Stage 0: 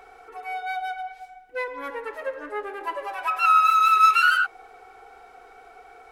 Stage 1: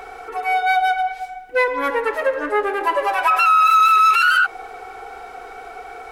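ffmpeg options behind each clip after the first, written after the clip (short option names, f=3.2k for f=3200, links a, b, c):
-af "alimiter=level_in=19.5dB:limit=-1dB:release=50:level=0:latency=1,volume=-7dB"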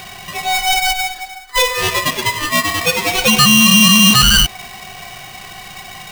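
-af "equalizer=f=250:t=o:w=0.33:g=8,equalizer=f=630:t=o:w=0.33:g=-11,equalizer=f=3.15k:t=o:w=0.33:g=11,aeval=exprs='val(0)*sgn(sin(2*PI*1500*n/s))':c=same,volume=4dB"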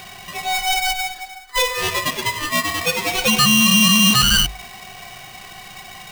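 -af "bandreject=f=50:t=h:w=6,bandreject=f=100:t=h:w=6,bandreject=f=150:t=h:w=6,volume=-4.5dB"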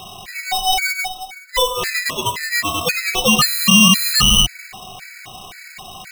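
-af "afftfilt=real='re*gt(sin(2*PI*1.9*pts/sr)*(1-2*mod(floor(b*sr/1024/1300),2)),0)':imag='im*gt(sin(2*PI*1.9*pts/sr)*(1-2*mod(floor(b*sr/1024/1300),2)),0)':win_size=1024:overlap=0.75,volume=4dB"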